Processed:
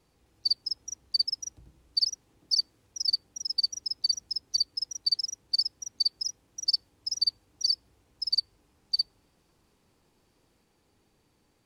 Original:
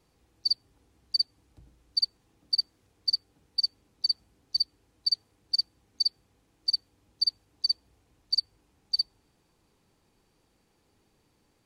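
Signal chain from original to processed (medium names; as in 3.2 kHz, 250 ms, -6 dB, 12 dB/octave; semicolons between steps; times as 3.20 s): ever faster or slower copies 259 ms, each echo +2 st, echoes 2, each echo -6 dB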